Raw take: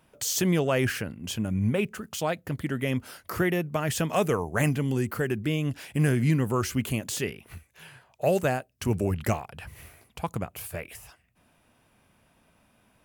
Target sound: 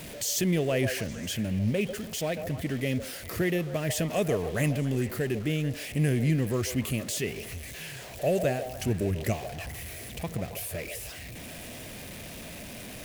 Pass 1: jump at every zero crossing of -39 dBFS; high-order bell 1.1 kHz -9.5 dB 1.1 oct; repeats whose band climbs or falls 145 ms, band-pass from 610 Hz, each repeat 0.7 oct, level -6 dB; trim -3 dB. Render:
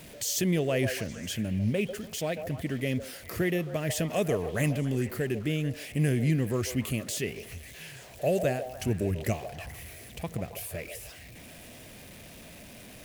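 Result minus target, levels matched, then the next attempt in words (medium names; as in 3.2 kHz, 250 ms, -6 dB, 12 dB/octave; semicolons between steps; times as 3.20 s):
jump at every zero crossing: distortion -6 dB
jump at every zero crossing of -32.5 dBFS; high-order bell 1.1 kHz -9.5 dB 1.1 oct; repeats whose band climbs or falls 145 ms, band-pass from 610 Hz, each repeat 0.7 oct, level -6 dB; trim -3 dB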